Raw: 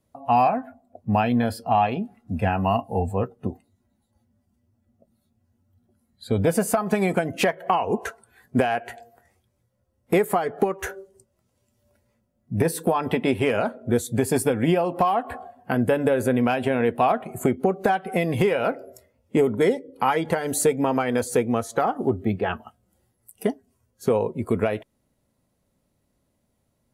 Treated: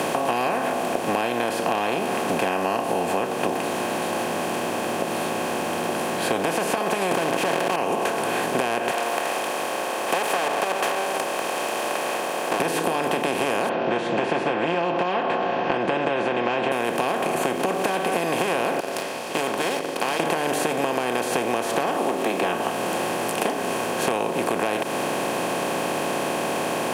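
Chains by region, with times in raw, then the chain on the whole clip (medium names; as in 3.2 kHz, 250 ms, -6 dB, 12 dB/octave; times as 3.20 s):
7.11–7.76 s: waveshaping leveller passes 3 + decay stretcher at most 24 dB/s
8.91–12.60 s: comb filter that takes the minimum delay 1.6 ms + high-pass 670 Hz 24 dB/octave
13.69–16.72 s: steep low-pass 2.9 kHz 48 dB/octave + comb 5.8 ms, depth 75%
18.80–20.20 s: band-pass filter 4.7 kHz, Q 8.1 + waveshaping leveller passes 1
21.96–22.43 s: steep high-pass 230 Hz + comb of notches 1.5 kHz
whole clip: spectral levelling over time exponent 0.2; high-pass 220 Hz 12 dB/octave; compression, threshold -14 dBFS; trim -6 dB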